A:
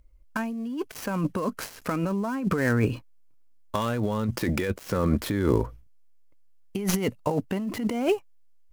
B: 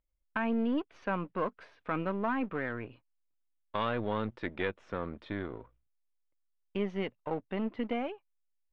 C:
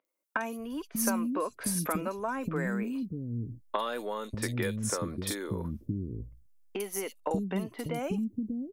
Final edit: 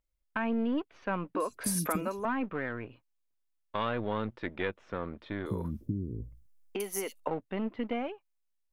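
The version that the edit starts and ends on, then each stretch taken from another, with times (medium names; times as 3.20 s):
B
1.35–2.25 s: from C
5.46–7.28 s: from C
not used: A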